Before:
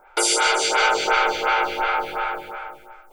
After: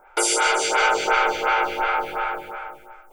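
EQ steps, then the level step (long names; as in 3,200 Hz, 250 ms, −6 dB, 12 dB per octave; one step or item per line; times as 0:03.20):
parametric band 4,100 Hz −6 dB 0.66 octaves
0.0 dB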